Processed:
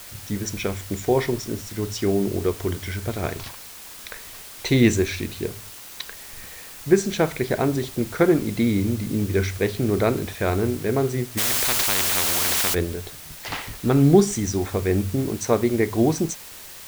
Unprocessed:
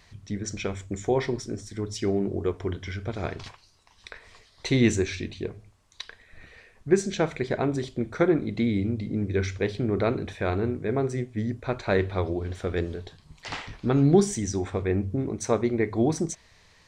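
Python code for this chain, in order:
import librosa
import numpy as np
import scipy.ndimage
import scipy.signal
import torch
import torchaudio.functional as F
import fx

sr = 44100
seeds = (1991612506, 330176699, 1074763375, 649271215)

p1 = fx.quant_dither(x, sr, seeds[0], bits=6, dither='triangular')
p2 = x + (p1 * librosa.db_to_amplitude(-4.5))
y = fx.spectral_comp(p2, sr, ratio=10.0, at=(11.37, 12.73), fade=0.02)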